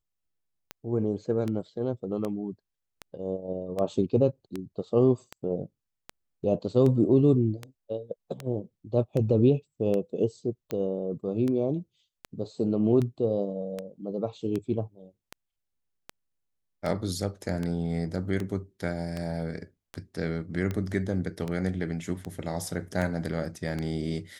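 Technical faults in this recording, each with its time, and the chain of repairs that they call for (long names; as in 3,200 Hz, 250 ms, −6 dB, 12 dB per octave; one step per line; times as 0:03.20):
scratch tick 78 rpm −19 dBFS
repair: click removal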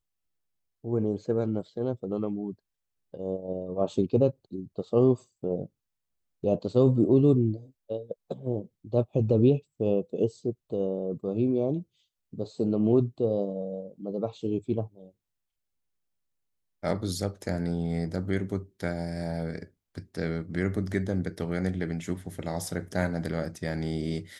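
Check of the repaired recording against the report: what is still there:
none of them is left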